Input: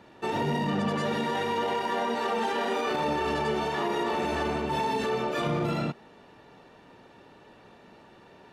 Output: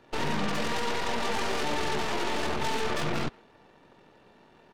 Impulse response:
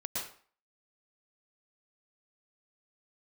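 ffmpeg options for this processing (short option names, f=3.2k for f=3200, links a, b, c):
-filter_complex "[0:a]aeval=exprs='0.133*(cos(1*acos(clip(val(0)/0.133,-1,1)))-cos(1*PI/2))+0.0473*(cos(8*acos(clip(val(0)/0.133,-1,1)))-cos(8*PI/2))':c=same,asplit=2[a][b];[b]adelay=230,highpass=300,lowpass=3.4k,asoftclip=type=hard:threshold=-22dB,volume=-25dB[c];[a][c]amix=inputs=2:normalize=0,atempo=1.8,volume=-4dB"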